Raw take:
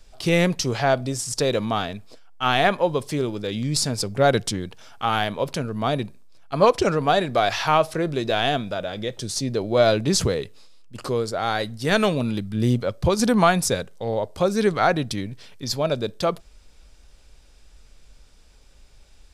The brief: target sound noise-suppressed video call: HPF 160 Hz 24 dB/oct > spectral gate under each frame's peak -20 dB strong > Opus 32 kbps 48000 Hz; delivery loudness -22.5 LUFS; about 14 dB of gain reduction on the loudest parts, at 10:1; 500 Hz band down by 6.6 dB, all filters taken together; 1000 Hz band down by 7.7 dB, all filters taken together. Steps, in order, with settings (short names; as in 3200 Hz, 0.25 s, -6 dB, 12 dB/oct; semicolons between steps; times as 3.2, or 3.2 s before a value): bell 500 Hz -5.5 dB; bell 1000 Hz -9 dB; compressor 10:1, threshold -32 dBFS; HPF 160 Hz 24 dB/oct; spectral gate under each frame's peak -20 dB strong; gain +15.5 dB; Opus 32 kbps 48000 Hz